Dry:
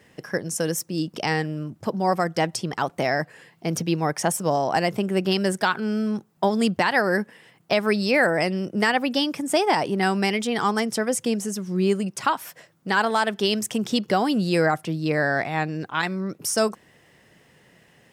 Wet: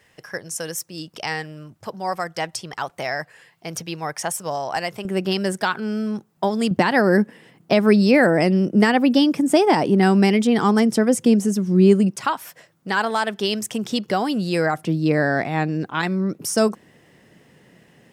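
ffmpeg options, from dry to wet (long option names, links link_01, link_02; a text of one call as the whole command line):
ffmpeg -i in.wav -af "asetnsamples=nb_out_samples=441:pad=0,asendcmd='5.05 equalizer g 0;6.71 equalizer g 10;12.16 equalizer g -0.5;14.77 equalizer g 7',equalizer=frequency=240:width_type=o:width=2.1:gain=-10.5" out.wav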